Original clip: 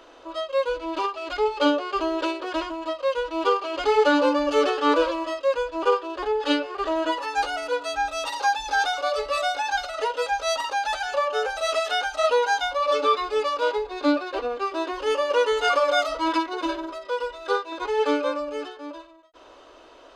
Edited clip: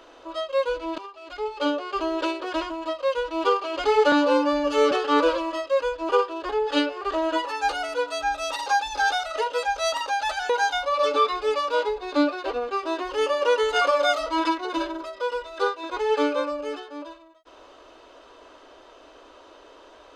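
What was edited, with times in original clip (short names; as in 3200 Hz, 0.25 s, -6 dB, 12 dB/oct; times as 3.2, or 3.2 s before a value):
0.98–2.24 fade in, from -16 dB
4.12–4.65 stretch 1.5×
8.97–9.87 cut
11.13–12.38 cut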